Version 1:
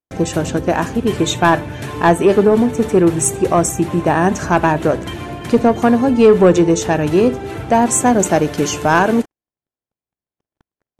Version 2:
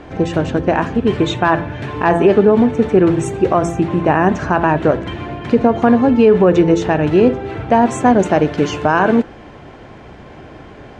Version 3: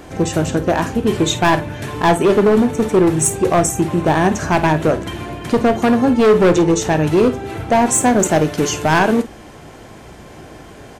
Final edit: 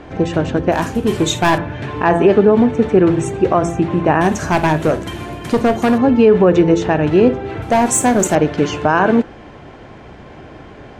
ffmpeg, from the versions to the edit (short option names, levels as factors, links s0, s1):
-filter_complex "[2:a]asplit=3[s0][s1][s2];[1:a]asplit=4[s3][s4][s5][s6];[s3]atrim=end=0.722[s7];[s0]atrim=start=0.718:end=1.582[s8];[s4]atrim=start=1.578:end=4.212[s9];[s1]atrim=start=4.208:end=5.982[s10];[s5]atrim=start=5.978:end=7.622[s11];[s2]atrim=start=7.618:end=8.352[s12];[s6]atrim=start=8.348[s13];[s7][s8]acrossfade=d=0.004:c1=hsin:c2=hsin[s14];[s14][s9]acrossfade=d=0.004:c1=hsin:c2=hsin[s15];[s15][s10]acrossfade=d=0.004:c1=hsin:c2=hsin[s16];[s16][s11]acrossfade=d=0.004:c1=hsin:c2=hsin[s17];[s17][s12]acrossfade=d=0.004:c1=hsin:c2=hsin[s18];[s18][s13]acrossfade=d=0.004:c1=hsin:c2=hsin"